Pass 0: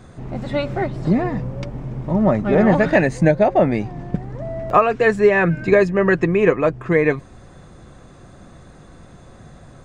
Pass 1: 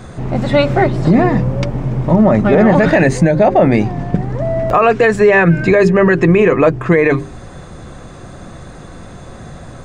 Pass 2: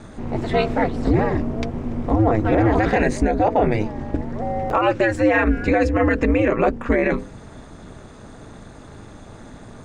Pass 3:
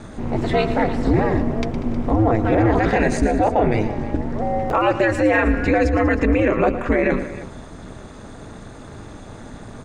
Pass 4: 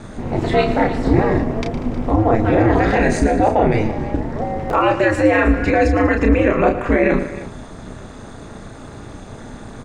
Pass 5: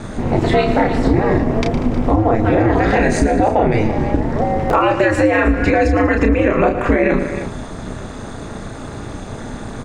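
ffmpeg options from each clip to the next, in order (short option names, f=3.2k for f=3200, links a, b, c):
-af "bandreject=f=50:t=h:w=6,bandreject=f=100:t=h:w=6,bandreject=f=150:t=h:w=6,bandreject=f=200:t=h:w=6,bandreject=f=250:t=h:w=6,bandreject=f=300:t=h:w=6,bandreject=f=350:t=h:w=6,bandreject=f=400:t=h:w=6,alimiter=level_in=12dB:limit=-1dB:release=50:level=0:latency=1,volume=-1dB"
-af "aeval=exprs='val(0)*sin(2*PI*110*n/s)':c=same,volume=-4.5dB"
-filter_complex "[0:a]asplit=2[a][b];[b]alimiter=limit=-15dB:level=0:latency=1:release=57,volume=-0.5dB[c];[a][c]amix=inputs=2:normalize=0,aecho=1:1:113|191|314:0.224|0.119|0.15,volume=-3dB"
-filter_complex "[0:a]asplit=2[a][b];[b]adelay=32,volume=-5.5dB[c];[a][c]amix=inputs=2:normalize=0,volume=1.5dB"
-af "acompressor=threshold=-16dB:ratio=5,volume=6dB"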